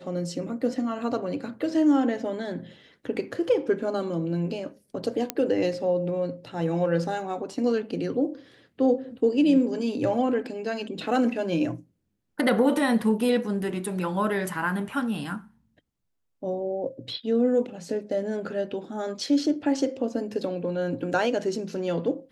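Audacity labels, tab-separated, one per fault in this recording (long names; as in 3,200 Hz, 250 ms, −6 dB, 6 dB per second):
5.300000	5.300000	click −8 dBFS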